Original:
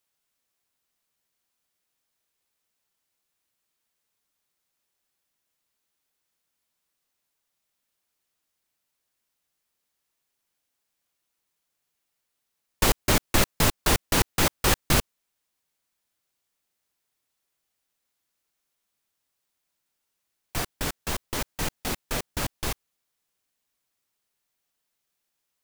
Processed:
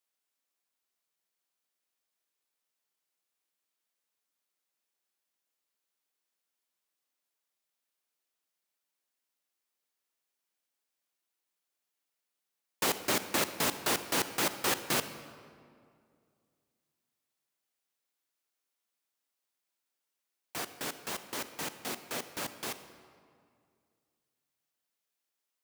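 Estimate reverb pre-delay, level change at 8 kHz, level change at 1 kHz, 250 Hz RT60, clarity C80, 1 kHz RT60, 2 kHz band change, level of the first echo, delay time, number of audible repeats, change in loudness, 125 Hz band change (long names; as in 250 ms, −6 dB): 36 ms, −6.5 dB, −6.0 dB, 2.5 s, 12.5 dB, 2.1 s, −6.0 dB, no echo audible, no echo audible, no echo audible, −7.0 dB, −17.5 dB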